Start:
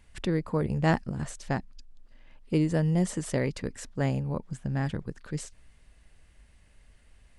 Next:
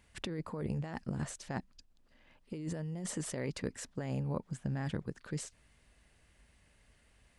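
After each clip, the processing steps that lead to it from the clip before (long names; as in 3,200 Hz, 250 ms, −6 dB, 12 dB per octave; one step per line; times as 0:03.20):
high-pass filter 95 Hz 6 dB per octave
compressor whose output falls as the input rises −31 dBFS, ratio −1
level −5.5 dB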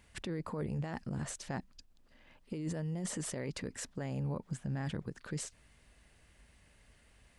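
brickwall limiter −31.5 dBFS, peak gain reduction 8.5 dB
level +2.5 dB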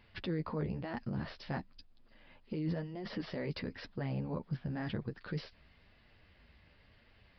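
flanger 0.99 Hz, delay 8 ms, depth 5.7 ms, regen −15%
downsampling to 11,025 Hz
level +4.5 dB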